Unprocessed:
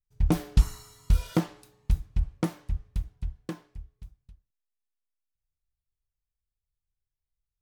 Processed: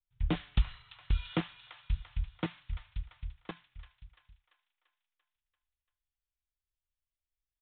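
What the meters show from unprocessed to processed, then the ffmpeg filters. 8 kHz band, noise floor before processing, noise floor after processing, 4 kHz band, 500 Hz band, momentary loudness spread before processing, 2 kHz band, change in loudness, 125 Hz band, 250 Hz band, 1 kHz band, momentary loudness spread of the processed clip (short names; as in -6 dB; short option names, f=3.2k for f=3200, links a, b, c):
under -30 dB, under -85 dBFS, under -85 dBFS, +0.5 dB, -7.0 dB, 17 LU, +0.5 dB, -7.5 dB, -7.5 dB, -8.0 dB, -5.0 dB, 19 LU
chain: -filter_complex "[0:a]highshelf=f=2.6k:g=9.5,acrossover=split=170|870[a][b][c];[b]acrusher=bits=4:mix=0:aa=0.000001[d];[c]aecho=1:1:341|682|1023|1364|1705|2046|2387:0.316|0.183|0.106|0.0617|0.0358|0.0208|0.012[e];[a][d][e]amix=inputs=3:normalize=0,aresample=8000,aresample=44100,adynamicequalizer=threshold=0.00447:dfrequency=1700:dqfactor=0.7:tfrequency=1700:tqfactor=0.7:attack=5:release=100:ratio=0.375:range=2.5:mode=boostabove:tftype=highshelf,volume=-7.5dB"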